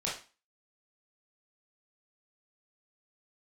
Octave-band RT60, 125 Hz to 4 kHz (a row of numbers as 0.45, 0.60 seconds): 0.30, 0.40, 0.30, 0.35, 0.35, 0.35 seconds